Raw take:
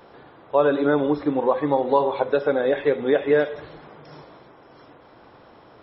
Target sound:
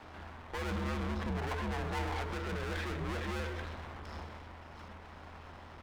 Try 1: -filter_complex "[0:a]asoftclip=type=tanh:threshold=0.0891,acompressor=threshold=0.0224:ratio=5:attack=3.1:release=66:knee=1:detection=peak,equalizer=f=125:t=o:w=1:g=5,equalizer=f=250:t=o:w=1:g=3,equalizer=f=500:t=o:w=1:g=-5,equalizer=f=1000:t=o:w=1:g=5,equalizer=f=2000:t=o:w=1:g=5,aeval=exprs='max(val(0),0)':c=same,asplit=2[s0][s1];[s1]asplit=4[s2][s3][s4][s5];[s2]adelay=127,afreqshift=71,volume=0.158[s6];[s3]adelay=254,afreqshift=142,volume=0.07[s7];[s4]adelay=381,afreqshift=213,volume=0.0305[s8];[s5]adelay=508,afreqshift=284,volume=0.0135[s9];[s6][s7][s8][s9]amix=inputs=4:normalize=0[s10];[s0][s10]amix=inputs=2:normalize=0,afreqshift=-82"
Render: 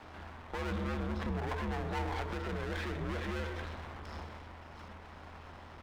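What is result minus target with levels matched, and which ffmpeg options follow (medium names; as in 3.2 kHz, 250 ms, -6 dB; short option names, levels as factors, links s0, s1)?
saturation: distortion -4 dB
-filter_complex "[0:a]asoftclip=type=tanh:threshold=0.0376,acompressor=threshold=0.0224:ratio=5:attack=3.1:release=66:knee=1:detection=peak,equalizer=f=125:t=o:w=1:g=5,equalizer=f=250:t=o:w=1:g=3,equalizer=f=500:t=o:w=1:g=-5,equalizer=f=1000:t=o:w=1:g=5,equalizer=f=2000:t=o:w=1:g=5,aeval=exprs='max(val(0),0)':c=same,asplit=2[s0][s1];[s1]asplit=4[s2][s3][s4][s5];[s2]adelay=127,afreqshift=71,volume=0.158[s6];[s3]adelay=254,afreqshift=142,volume=0.07[s7];[s4]adelay=381,afreqshift=213,volume=0.0305[s8];[s5]adelay=508,afreqshift=284,volume=0.0135[s9];[s6][s7][s8][s9]amix=inputs=4:normalize=0[s10];[s0][s10]amix=inputs=2:normalize=0,afreqshift=-82"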